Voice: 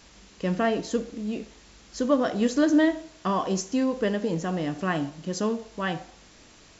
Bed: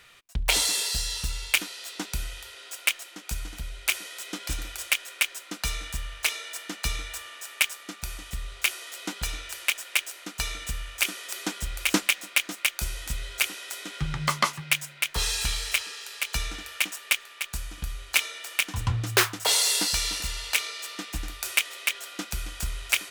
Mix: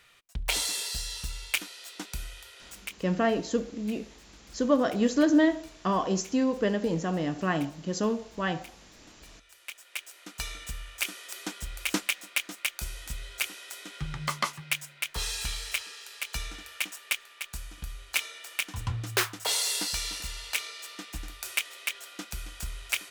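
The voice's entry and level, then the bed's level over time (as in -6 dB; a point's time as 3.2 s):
2.60 s, -1.0 dB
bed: 2.68 s -5.5 dB
3.1 s -25.5 dB
9.1 s -25.5 dB
10.36 s -5.5 dB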